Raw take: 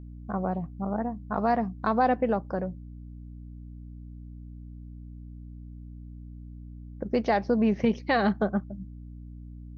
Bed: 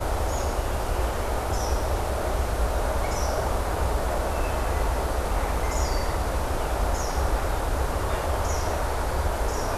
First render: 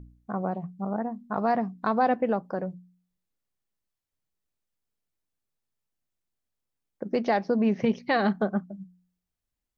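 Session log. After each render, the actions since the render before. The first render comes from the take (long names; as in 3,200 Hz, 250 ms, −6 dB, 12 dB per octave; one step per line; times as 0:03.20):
hum removal 60 Hz, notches 5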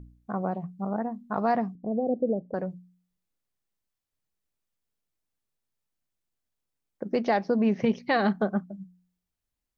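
0:01.75–0:02.54: Butterworth low-pass 620 Hz 48 dB per octave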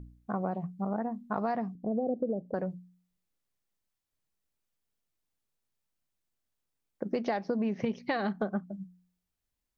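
downward compressor, threshold −27 dBFS, peak gain reduction 8.5 dB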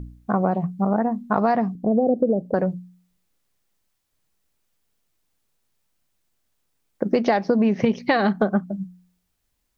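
level +11.5 dB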